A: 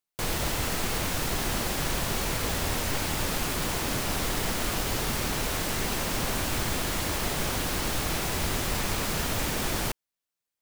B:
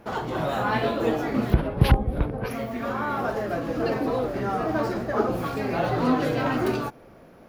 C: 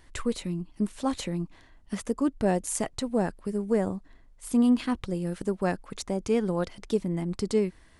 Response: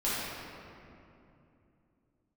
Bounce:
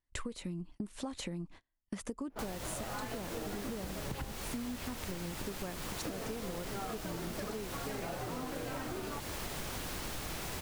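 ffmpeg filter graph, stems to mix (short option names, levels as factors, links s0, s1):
-filter_complex "[0:a]adelay=2200,volume=0.562[s0];[1:a]bandreject=f=50:t=h:w=6,bandreject=f=100:t=h:w=6,bandreject=f=150:t=h:w=6,bandreject=f=200:t=h:w=6,bandreject=f=250:t=h:w=6,adelay=2300,volume=1.33,asplit=3[s1][s2][s3];[s1]atrim=end=4.34,asetpts=PTS-STARTPTS,afade=t=out:st=4.336:d=0.004:c=hsin[s4];[s2]atrim=start=4.34:end=6.05,asetpts=PTS-STARTPTS,volume=0[s5];[s3]atrim=start=6.05,asetpts=PTS-STARTPTS,afade=t=in:d=0.004:c=hsin[s6];[s4][s5][s6]concat=n=3:v=0:a=1[s7];[2:a]volume=1,asplit=2[s8][s9];[s9]apad=whole_len=431633[s10];[s7][s10]sidechaincompress=threshold=0.0282:ratio=8:attack=16:release=440[s11];[s11][s8]amix=inputs=2:normalize=0,agate=range=0.0224:threshold=0.00562:ratio=16:detection=peak,acompressor=threshold=0.0447:ratio=3,volume=1[s12];[s0][s12]amix=inputs=2:normalize=0,acompressor=threshold=0.0158:ratio=12"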